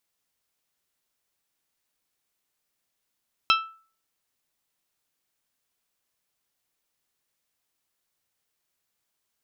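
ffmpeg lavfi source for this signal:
ffmpeg -f lavfi -i "aevalsrc='0.158*pow(10,-3*t/0.42)*sin(2*PI*1320*t)+0.126*pow(10,-3*t/0.259)*sin(2*PI*2640*t)+0.1*pow(10,-3*t/0.228)*sin(2*PI*3168*t)+0.0794*pow(10,-3*t/0.195)*sin(2*PI*3960*t)+0.0631*pow(10,-3*t/0.159)*sin(2*PI*5280*t)':duration=0.89:sample_rate=44100" out.wav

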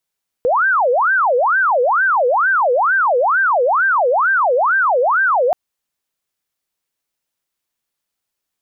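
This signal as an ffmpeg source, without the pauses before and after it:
ffmpeg -f lavfi -i "aevalsrc='0.266*sin(2*PI*(1030.5*t-549.5/(2*PI*2.2)*sin(2*PI*2.2*t)))':duration=5.08:sample_rate=44100" out.wav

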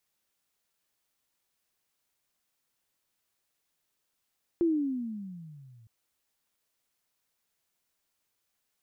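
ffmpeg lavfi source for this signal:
ffmpeg -f lavfi -i "aevalsrc='pow(10,(-21-32*t/1.26)/20)*sin(2*PI*348*1.26/(-20*log(2)/12)*(exp(-20*log(2)/12*t/1.26)-1))':duration=1.26:sample_rate=44100" out.wav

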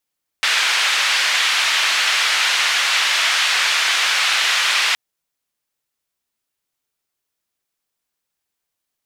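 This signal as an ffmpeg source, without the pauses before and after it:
ffmpeg -f lavfi -i "anoisesrc=color=white:duration=4.52:sample_rate=44100:seed=1,highpass=frequency=1500,lowpass=frequency=3200,volume=-2.1dB" out.wav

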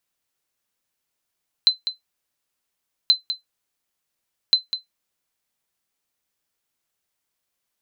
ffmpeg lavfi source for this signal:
ffmpeg -f lavfi -i "aevalsrc='0.501*(sin(2*PI*4060*mod(t,1.43))*exp(-6.91*mod(t,1.43)/0.14)+0.299*sin(2*PI*4060*max(mod(t,1.43)-0.2,0))*exp(-6.91*max(mod(t,1.43)-0.2,0)/0.14))':duration=4.29:sample_rate=44100" out.wav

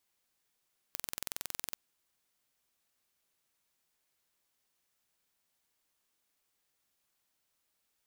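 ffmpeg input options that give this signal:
ffmpeg -f lavfi -i "aevalsrc='0.335*eq(mod(n,2032),0)':duration=0.8:sample_rate=44100" out.wav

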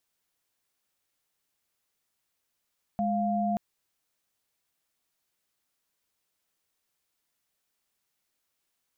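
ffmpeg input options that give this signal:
ffmpeg -f lavfi -i "aevalsrc='0.0422*(sin(2*PI*207.65*t)+sin(2*PI*698.46*t))':duration=0.58:sample_rate=44100" out.wav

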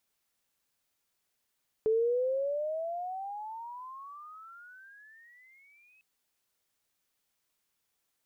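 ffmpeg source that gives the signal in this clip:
ffmpeg -f lavfi -i "aevalsrc='pow(10,(-23-37.5*t/4.15)/20)*sin(2*PI*433*4.15/(31*log(2)/12)*(exp(31*log(2)/12*t/4.15)-1))':duration=4.15:sample_rate=44100" out.wav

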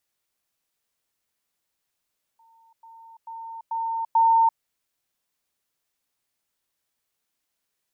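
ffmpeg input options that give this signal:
ffmpeg -f lavfi -i "aevalsrc='pow(10,(-54.5+10*floor(t/0.44))/20)*sin(2*PI*909*t)*clip(min(mod(t,0.44),0.34-mod(t,0.44))/0.005,0,1)':duration=2.2:sample_rate=44100" out.wav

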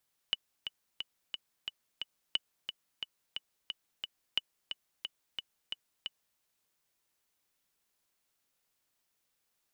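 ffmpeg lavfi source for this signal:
ffmpeg -f lavfi -i "aevalsrc='pow(10,(-15.5-8*gte(mod(t,6*60/178),60/178))/20)*sin(2*PI*2960*mod(t,60/178))*exp(-6.91*mod(t,60/178)/0.03)':duration=6.06:sample_rate=44100" out.wav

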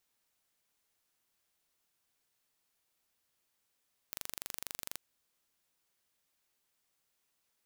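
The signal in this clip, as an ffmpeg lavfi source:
ffmpeg -f lavfi -i "aevalsrc='0.251*eq(mod(n,1822),0)':duration=0.84:sample_rate=44100" out.wav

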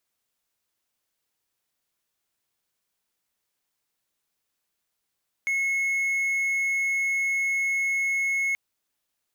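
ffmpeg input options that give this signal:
ffmpeg -f lavfi -i "aevalsrc='0.0944*(1-4*abs(mod(2180*t+0.25,1)-0.5))':duration=3.08:sample_rate=44100" out.wav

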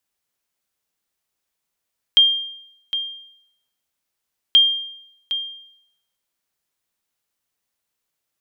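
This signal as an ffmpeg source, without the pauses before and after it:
ffmpeg -f lavfi -i "aevalsrc='0.501*(sin(2*PI*3200*mod(t,2.38))*exp(-6.91*mod(t,2.38)/0.75)+0.266*sin(2*PI*3200*max(mod(t,2.38)-0.76,0))*exp(-6.91*max(mod(t,2.38)-0.76,0)/0.75))':duration=4.76:sample_rate=44100" out.wav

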